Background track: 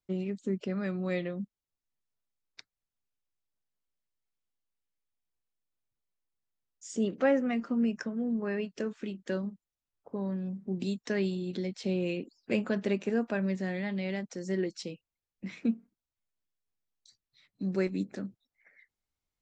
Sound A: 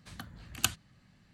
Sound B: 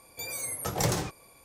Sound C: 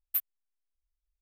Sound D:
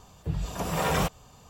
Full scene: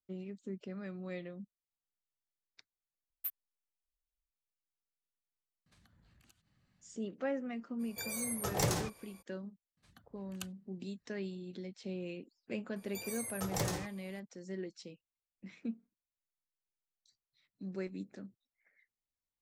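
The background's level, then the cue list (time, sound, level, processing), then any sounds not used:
background track −10.5 dB
0:03.10: overwrite with C −9.5 dB
0:05.66: mix in A −11.5 dB + downward compressor 16 to 1, threshold −51 dBFS
0:07.79: mix in B −4.5 dB, fades 0.02 s
0:09.77: mix in A −17 dB + reverb reduction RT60 0.87 s
0:12.76: mix in B −8 dB
not used: D

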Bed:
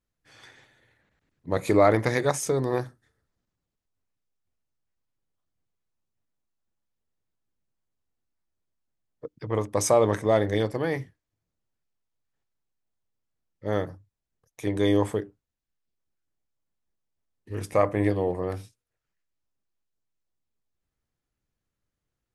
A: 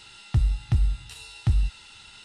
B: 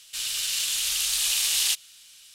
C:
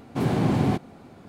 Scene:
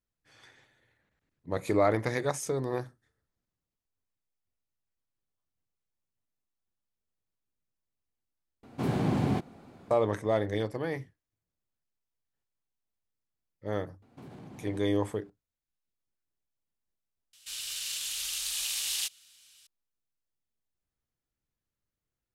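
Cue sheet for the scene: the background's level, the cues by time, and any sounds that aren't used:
bed −6 dB
0:08.63: overwrite with C −5.5 dB
0:14.02: mix in C −16 dB + downward compressor, threshold −28 dBFS
0:17.33: overwrite with B −8.5 dB
not used: A

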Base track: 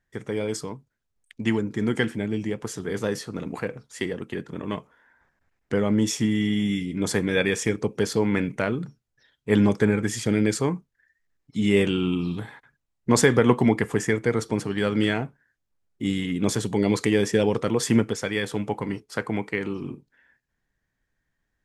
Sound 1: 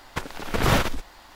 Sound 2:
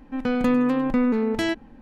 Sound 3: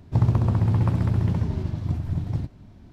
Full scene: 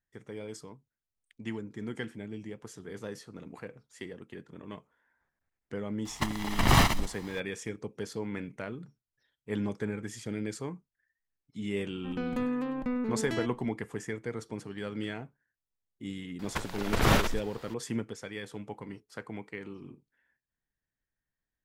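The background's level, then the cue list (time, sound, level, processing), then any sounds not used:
base track −13.5 dB
0:06.05: mix in 1 + lower of the sound and its delayed copy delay 1 ms
0:11.92: mix in 2 −11 dB
0:16.39: mix in 1 −3.5 dB
not used: 3

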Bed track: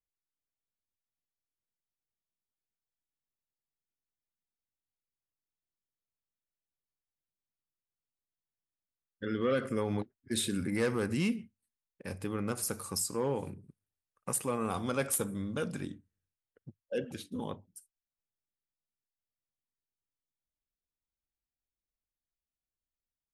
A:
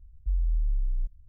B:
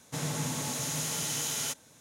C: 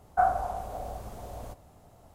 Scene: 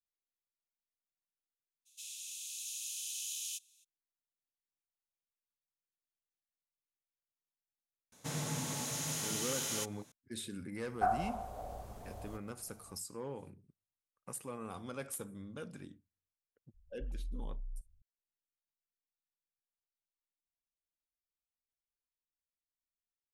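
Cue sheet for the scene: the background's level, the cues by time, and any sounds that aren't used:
bed track −11 dB
0:01.85: mix in B −6.5 dB, fades 0.02 s + Chebyshev high-pass with heavy ripple 2,500 Hz, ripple 3 dB
0:08.12: mix in B −5 dB
0:10.84: mix in C −7.5 dB
0:16.74: mix in A −15 dB

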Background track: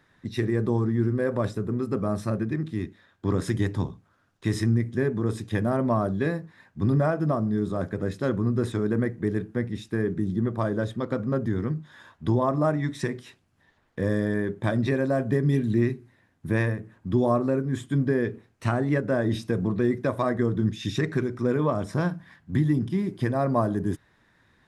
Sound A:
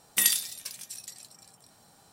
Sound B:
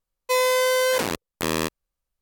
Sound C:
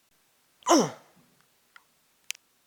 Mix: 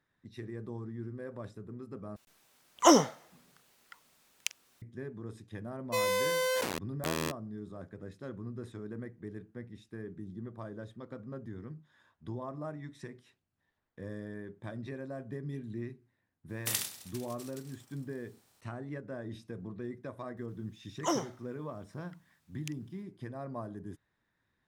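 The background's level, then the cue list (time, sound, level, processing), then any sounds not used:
background track −17 dB
0:02.16: overwrite with C + bit reduction 12 bits
0:05.63: mix in B −9.5 dB
0:16.49: mix in A −10 dB + compressing power law on the bin magnitudes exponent 0.43
0:20.37: mix in C −10.5 dB

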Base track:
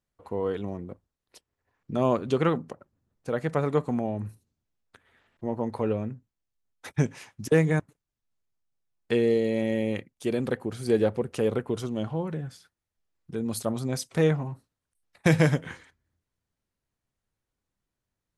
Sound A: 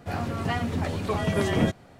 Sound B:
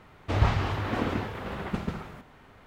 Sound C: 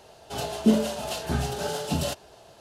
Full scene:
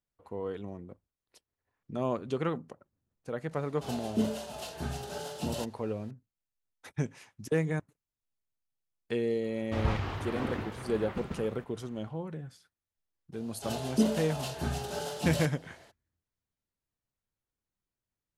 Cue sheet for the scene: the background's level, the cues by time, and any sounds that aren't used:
base track −7.5 dB
0:03.51: mix in C −9 dB
0:09.43: mix in B −6.5 dB
0:13.32: mix in C −6 dB, fades 0.02 s
not used: A

